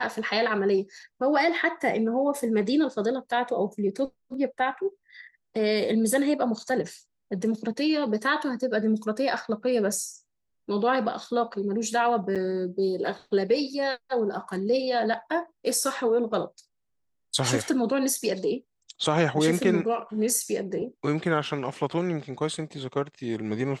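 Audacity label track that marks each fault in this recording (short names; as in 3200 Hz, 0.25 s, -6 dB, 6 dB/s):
12.350000	12.360000	gap 7.1 ms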